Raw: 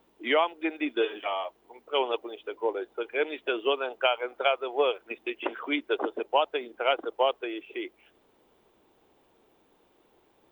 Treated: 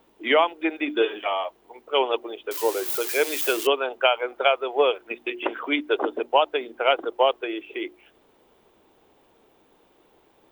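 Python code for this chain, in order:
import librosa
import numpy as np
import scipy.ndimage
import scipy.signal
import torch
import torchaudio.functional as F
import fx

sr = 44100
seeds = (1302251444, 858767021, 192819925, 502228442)

y = fx.crossing_spikes(x, sr, level_db=-24.0, at=(2.51, 3.67))
y = fx.hum_notches(y, sr, base_hz=60, count=6)
y = F.gain(torch.from_numpy(y), 5.0).numpy()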